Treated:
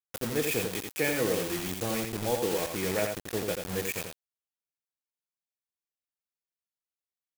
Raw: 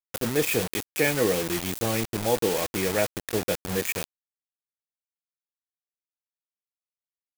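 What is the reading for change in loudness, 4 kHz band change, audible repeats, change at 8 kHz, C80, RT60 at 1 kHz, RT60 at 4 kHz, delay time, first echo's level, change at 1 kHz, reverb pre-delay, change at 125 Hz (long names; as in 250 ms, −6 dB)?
−4.5 dB, −4.5 dB, 1, −4.5 dB, no reverb audible, no reverb audible, no reverb audible, 86 ms, −5.0 dB, −4.5 dB, no reverb audible, −4.5 dB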